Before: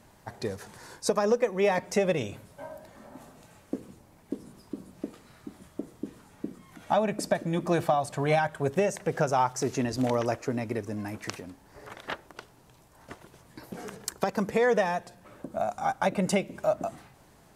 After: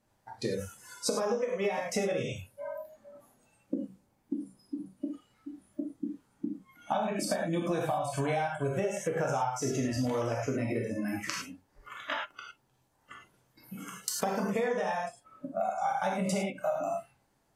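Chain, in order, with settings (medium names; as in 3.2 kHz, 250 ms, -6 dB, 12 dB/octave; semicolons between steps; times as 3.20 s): gated-style reverb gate 130 ms flat, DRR -2.5 dB; spectral noise reduction 19 dB; compression 10:1, threshold -27 dBFS, peak gain reduction 14 dB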